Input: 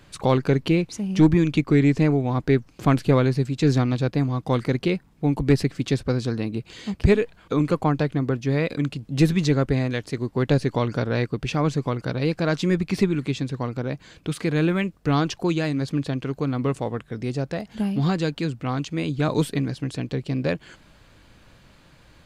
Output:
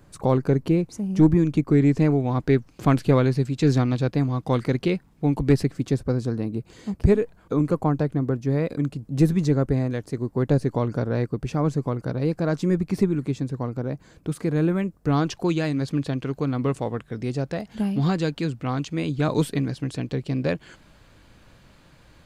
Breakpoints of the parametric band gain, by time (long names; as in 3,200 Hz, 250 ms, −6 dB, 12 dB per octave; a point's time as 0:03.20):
parametric band 3,100 Hz 1.9 octaves
0:01.60 −12.5 dB
0:02.21 −2.5 dB
0:05.43 −2.5 dB
0:05.95 −12.5 dB
0:14.94 −12.5 dB
0:15.37 −2 dB